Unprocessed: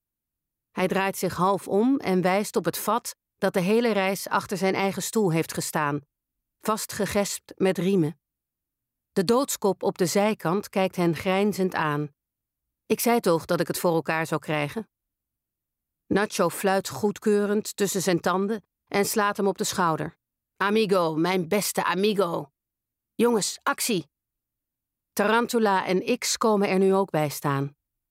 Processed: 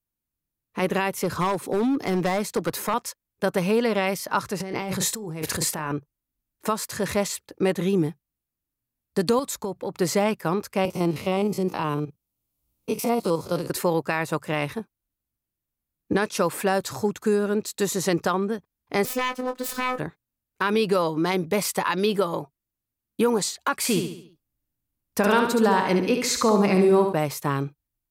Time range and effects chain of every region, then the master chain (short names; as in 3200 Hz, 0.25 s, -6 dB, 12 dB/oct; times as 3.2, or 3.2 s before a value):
1.16–2.94 overloaded stage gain 19 dB + three-band squash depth 40%
4.6–5.92 low shelf 290 Hz +4 dB + doubler 32 ms -11 dB + negative-ratio compressor -29 dBFS
9.39–9.99 low shelf 130 Hz +7 dB + compressor 4:1, threshold -26 dBFS
10.85–13.7 stepped spectrum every 50 ms + bell 1700 Hz -12 dB 0.47 oct + three-band squash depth 40%
19.05–19.99 self-modulated delay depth 0.22 ms + robotiser 253 Hz + doubler 22 ms -8 dB
23.76–27.13 low shelf 190 Hz +6.5 dB + feedback echo 70 ms, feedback 45%, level -6 dB
whole clip: dry